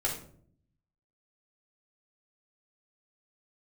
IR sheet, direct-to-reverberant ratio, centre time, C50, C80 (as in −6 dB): −6.0 dB, 27 ms, 6.0 dB, 10.5 dB